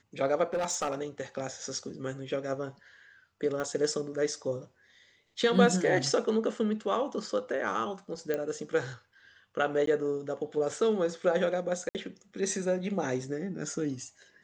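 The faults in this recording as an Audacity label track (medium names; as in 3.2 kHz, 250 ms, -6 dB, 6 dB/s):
0.530000	1.030000	clipped -26 dBFS
3.600000	3.600000	pop -22 dBFS
8.340000	8.340000	pop -18 dBFS
9.860000	9.870000	dropout 13 ms
11.890000	11.950000	dropout 58 ms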